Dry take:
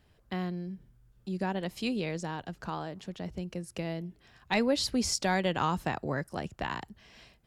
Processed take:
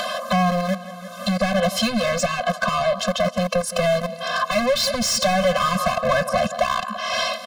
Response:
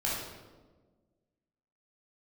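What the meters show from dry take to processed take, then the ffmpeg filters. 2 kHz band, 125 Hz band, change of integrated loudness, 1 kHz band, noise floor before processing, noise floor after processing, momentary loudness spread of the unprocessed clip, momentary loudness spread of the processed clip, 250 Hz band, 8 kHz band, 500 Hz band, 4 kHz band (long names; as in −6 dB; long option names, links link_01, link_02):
+13.0 dB, +9.0 dB, +12.0 dB, +13.5 dB, −65 dBFS, −36 dBFS, 13 LU, 6 LU, +8.0 dB, +11.5 dB, +14.5 dB, +13.5 dB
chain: -filter_complex "[0:a]equalizer=frequency=125:width_type=o:width=1:gain=-9,equalizer=frequency=250:width_type=o:width=1:gain=6,equalizer=frequency=1000:width_type=o:width=1:gain=7,equalizer=frequency=2000:width_type=o:width=1:gain=-8,acrossover=split=240|2200[link_01][link_02][link_03];[link_01]aeval=exprs='val(0)*gte(abs(val(0)),0.0112)':channel_layout=same[link_04];[link_04][link_02][link_03]amix=inputs=3:normalize=0,aresample=32000,aresample=44100,aecho=1:1:169|338|507:0.0631|0.0278|0.0122,acompressor=mode=upward:threshold=-38dB:ratio=2.5,asplit=2[link_05][link_06];[link_06]highpass=frequency=720:poles=1,volume=32dB,asoftclip=type=tanh:threshold=-13.5dB[link_07];[link_05][link_07]amix=inputs=2:normalize=0,lowpass=frequency=4200:poles=1,volume=-6dB,acompressor=threshold=-22dB:ratio=6,afftfilt=real='re*eq(mod(floor(b*sr/1024/250),2),0)':imag='im*eq(mod(floor(b*sr/1024/250),2),0)':win_size=1024:overlap=0.75,volume=8dB"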